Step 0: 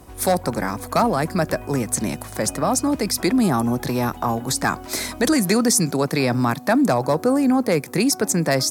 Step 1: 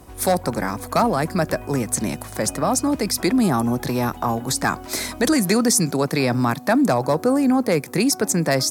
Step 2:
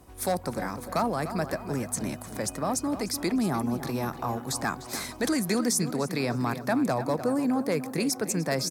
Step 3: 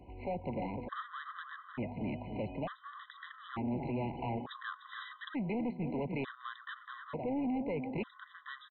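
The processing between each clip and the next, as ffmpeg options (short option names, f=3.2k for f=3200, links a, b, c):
-af anull
-filter_complex "[0:a]asplit=2[a][b];[b]adelay=300,lowpass=f=3.6k:p=1,volume=-11dB,asplit=2[c][d];[d]adelay=300,lowpass=f=3.6k:p=1,volume=0.48,asplit=2[e][f];[f]adelay=300,lowpass=f=3.6k:p=1,volume=0.48,asplit=2[g][h];[h]adelay=300,lowpass=f=3.6k:p=1,volume=0.48,asplit=2[i][j];[j]adelay=300,lowpass=f=3.6k:p=1,volume=0.48[k];[a][c][e][g][i][k]amix=inputs=6:normalize=0,volume=-8.5dB"
-af "alimiter=limit=-20.5dB:level=0:latency=1:release=242,aresample=8000,asoftclip=type=tanh:threshold=-31dB,aresample=44100,afftfilt=real='re*gt(sin(2*PI*0.56*pts/sr)*(1-2*mod(floor(b*sr/1024/1000),2)),0)':imag='im*gt(sin(2*PI*0.56*pts/sr)*(1-2*mod(floor(b*sr/1024/1000),2)),0)':win_size=1024:overlap=0.75"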